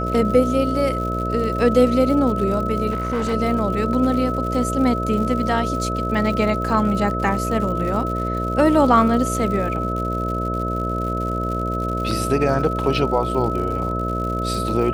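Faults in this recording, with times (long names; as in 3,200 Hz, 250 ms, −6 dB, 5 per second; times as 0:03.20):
mains buzz 60 Hz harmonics 11 −25 dBFS
surface crackle 130 per second −29 dBFS
whistle 1,300 Hz −25 dBFS
0:02.90–0:03.34: clipping −18.5 dBFS
0:12.11: drop-out 2.1 ms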